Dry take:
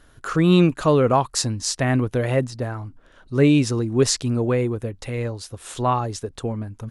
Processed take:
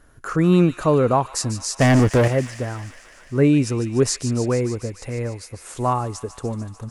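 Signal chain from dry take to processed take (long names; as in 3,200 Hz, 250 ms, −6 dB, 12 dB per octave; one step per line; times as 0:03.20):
parametric band 3,500 Hz −9.5 dB 0.82 octaves
0:01.80–0:02.28: leveller curve on the samples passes 3
on a send: delay with a high-pass on its return 148 ms, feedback 77%, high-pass 1,900 Hz, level −10.5 dB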